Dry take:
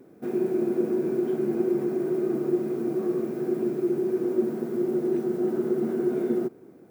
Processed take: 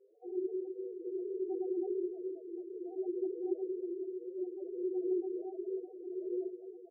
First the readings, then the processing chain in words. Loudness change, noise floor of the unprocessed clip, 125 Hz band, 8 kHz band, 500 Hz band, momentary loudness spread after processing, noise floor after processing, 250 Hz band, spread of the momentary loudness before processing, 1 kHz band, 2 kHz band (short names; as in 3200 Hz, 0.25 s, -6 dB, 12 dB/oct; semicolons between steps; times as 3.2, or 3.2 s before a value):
-12.0 dB, -52 dBFS, under -40 dB, n/a, -11.0 dB, 7 LU, -53 dBFS, -13.5 dB, 3 LU, -14.5 dB, under -40 dB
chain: HPF 380 Hz 24 dB/oct; three-band isolator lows -18 dB, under 490 Hz, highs -24 dB, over 2500 Hz; on a send: feedback echo 0.221 s, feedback 57%, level -10 dB; on the sum: chorus voices 2, 1.3 Hz, delay 24 ms, depth 3 ms; tremolo 0.59 Hz, depth 58%; in parallel at -11 dB: requantised 8-bit, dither none; on the sum: loudest bins only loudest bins 4; tilt shelf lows +7.5 dB, about 700 Hz; gain +1.5 dB